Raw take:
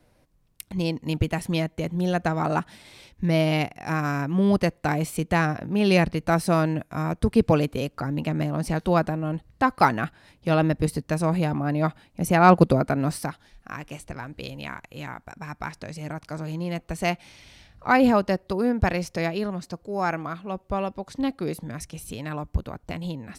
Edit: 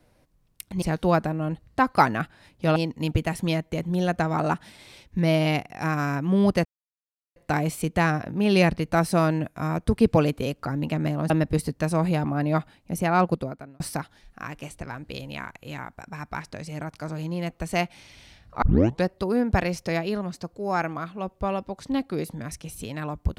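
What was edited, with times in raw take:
0:04.71: splice in silence 0.71 s
0:08.65–0:10.59: move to 0:00.82
0:11.86–0:13.09: fade out
0:17.91: tape start 0.43 s

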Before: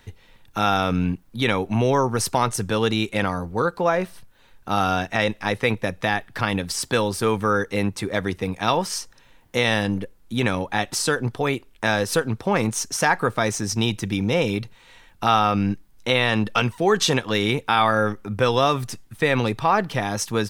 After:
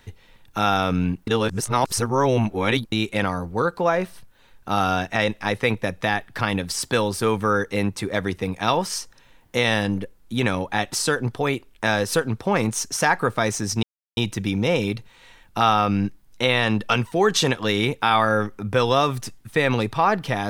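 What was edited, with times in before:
0:01.27–0:02.92: reverse
0:13.83: splice in silence 0.34 s

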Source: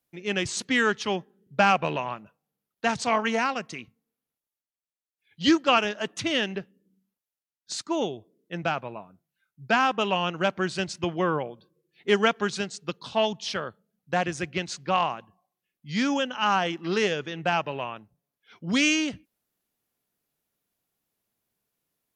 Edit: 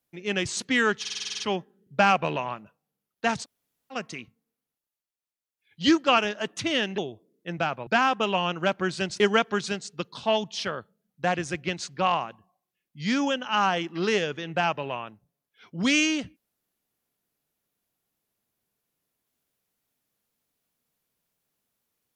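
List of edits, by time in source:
0:01.00: stutter 0.05 s, 9 plays
0:03.03–0:03.53: fill with room tone, crossfade 0.06 s
0:06.58–0:08.03: remove
0:08.92–0:09.65: remove
0:10.98–0:12.09: remove

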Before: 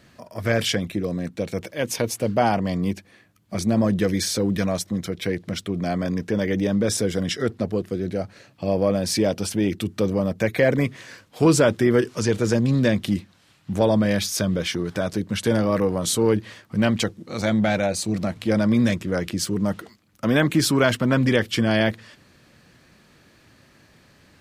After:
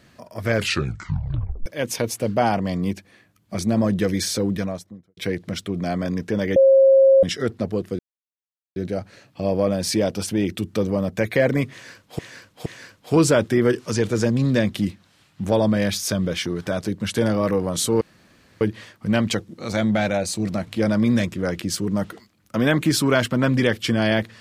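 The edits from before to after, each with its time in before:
0:00.52: tape stop 1.14 s
0:04.37–0:05.17: fade out and dull
0:06.56–0:07.23: beep over 538 Hz −9.5 dBFS
0:07.99: splice in silence 0.77 s
0:10.95–0:11.42: repeat, 3 plays
0:16.30: splice in room tone 0.60 s

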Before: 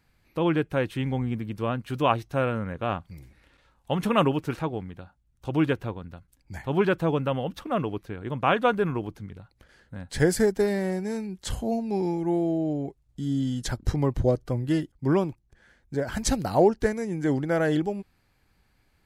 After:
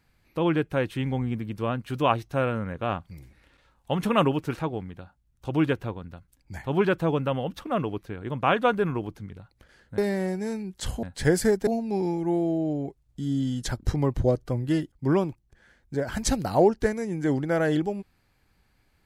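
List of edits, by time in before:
0:09.98–0:10.62: move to 0:11.67

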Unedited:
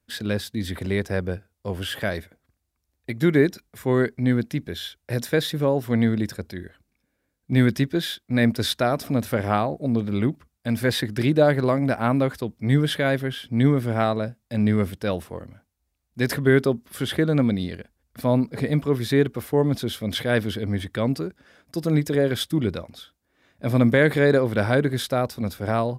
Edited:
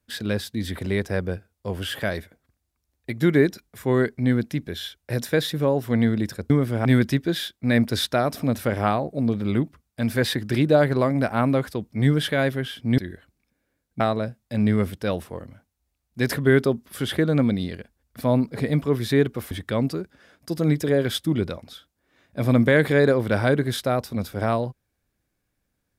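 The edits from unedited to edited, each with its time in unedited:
0:06.50–0:07.52: swap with 0:13.65–0:14.00
0:19.51–0:20.77: remove

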